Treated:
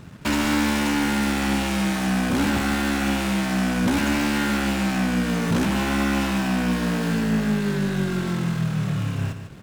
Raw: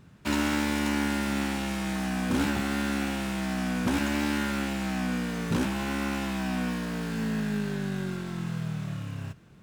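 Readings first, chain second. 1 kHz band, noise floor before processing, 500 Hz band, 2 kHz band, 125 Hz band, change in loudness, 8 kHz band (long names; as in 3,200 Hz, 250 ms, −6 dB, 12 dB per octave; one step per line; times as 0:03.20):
+7.0 dB, −52 dBFS, +6.5 dB, +6.5 dB, +7.5 dB, +6.5 dB, +7.0 dB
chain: in parallel at +2 dB: downward compressor, threshold −36 dBFS, peak gain reduction 13 dB
on the sum: leveller curve on the samples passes 2
single-tap delay 146 ms −9.5 dB
level −2 dB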